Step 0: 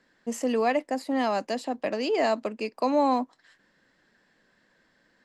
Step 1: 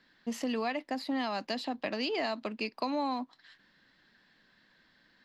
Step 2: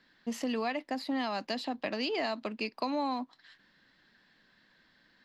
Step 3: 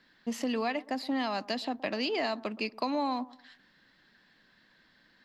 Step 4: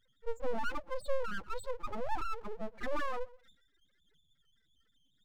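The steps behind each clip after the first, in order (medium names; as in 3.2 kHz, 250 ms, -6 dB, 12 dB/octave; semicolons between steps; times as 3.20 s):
ten-band graphic EQ 500 Hz -7 dB, 4 kHz +9 dB, 8 kHz -12 dB; compression, threshold -29 dBFS, peak gain reduction 8 dB
no audible change
bucket-brigade echo 120 ms, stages 1024, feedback 31%, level -20 dB; trim +1.5 dB
loudest bins only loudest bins 2; pre-echo 37 ms -20 dB; full-wave rectifier; trim +4 dB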